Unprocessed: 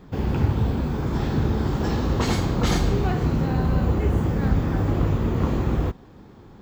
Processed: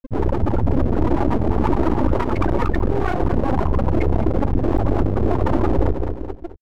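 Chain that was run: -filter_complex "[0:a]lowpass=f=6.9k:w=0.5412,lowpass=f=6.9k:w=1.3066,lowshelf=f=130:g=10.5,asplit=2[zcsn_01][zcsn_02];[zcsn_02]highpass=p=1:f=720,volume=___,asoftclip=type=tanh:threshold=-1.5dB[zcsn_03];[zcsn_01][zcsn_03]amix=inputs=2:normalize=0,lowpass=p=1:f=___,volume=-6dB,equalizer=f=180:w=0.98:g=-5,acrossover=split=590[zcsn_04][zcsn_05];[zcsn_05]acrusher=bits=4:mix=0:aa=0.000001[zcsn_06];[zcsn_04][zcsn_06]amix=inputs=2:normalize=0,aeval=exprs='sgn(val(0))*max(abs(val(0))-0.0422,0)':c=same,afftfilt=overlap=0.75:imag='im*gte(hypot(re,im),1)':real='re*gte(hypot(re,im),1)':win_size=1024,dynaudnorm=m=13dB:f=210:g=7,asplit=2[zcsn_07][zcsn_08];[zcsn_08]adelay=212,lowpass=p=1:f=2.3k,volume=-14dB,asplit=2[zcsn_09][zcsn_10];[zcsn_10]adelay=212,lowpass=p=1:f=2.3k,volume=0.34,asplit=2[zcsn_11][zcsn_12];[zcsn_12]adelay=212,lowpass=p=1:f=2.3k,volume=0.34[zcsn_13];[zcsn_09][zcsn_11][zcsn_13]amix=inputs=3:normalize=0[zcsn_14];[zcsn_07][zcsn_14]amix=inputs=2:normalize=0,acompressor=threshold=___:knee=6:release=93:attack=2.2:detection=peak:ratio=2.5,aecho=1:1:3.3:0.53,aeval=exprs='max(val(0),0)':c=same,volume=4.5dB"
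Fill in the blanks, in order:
47dB, 3.6k, -21dB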